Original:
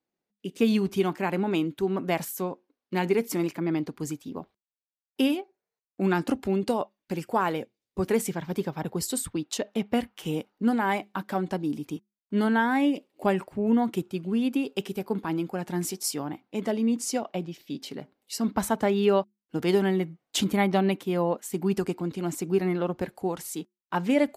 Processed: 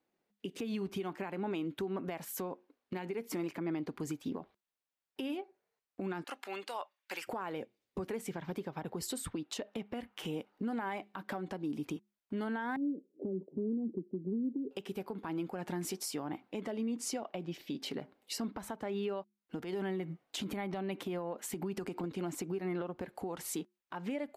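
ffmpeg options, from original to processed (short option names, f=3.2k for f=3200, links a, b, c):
-filter_complex "[0:a]asettb=1/sr,asplit=3[a][b][c];[a]atrim=end=6.244[d];[b]atrim=start=6.24:end=7.27,asetpts=PTS-STARTPTS,afade=t=in:d=0.004:c=qsin,afade=t=out:st=1.026:d=0.004:c=qsin,highpass=1.2k[e];[c]atrim=start=7.266[f];[d][e]acrossfade=d=0.004:c1=hsin:c2=qsin[g];[g][f]acrossfade=d=0.004:c1=qsin:c2=hsin,asettb=1/sr,asplit=3[h][i][j];[h]atrim=end=12.764[k];[i]atrim=start=12.76:end=14.71,asetpts=PTS-STARTPTS,afade=t=in:d=0.004:c=qsin,afade=t=out:st=1.946:d=0.004:c=qsin,asuperpass=centerf=270:order=8:qfactor=0.92[l];[j]atrim=start=14.706[m];[k][l]acrossfade=d=0.004:c1=hsin:c2=qsin[n];[n][m]acrossfade=d=0.004:c1=qsin:c2=hsin,asettb=1/sr,asplit=3[o][p][q];[o]atrim=end=19.614[r];[p]atrim=start=19.61:end=22.04,asetpts=PTS-STARTPTS,afade=t=in:d=0.004:c=qsin,afade=t=out:st=2.426:d=0.004:c=qsin,acompressor=threshold=-35dB:ratio=8:attack=3.2:release=140:knee=1:detection=peak[s];[q]atrim=start=22.036[t];[r][s]acrossfade=d=0.004:c1=hsin:c2=qsin[u];[u][t]acrossfade=d=0.004:c1=qsin:c2=hsin,bass=f=250:g=-4,treble=f=4k:g=-7,acompressor=threshold=-36dB:ratio=6,alimiter=level_in=10dB:limit=-24dB:level=0:latency=1:release=179,volume=-10dB,volume=5.5dB"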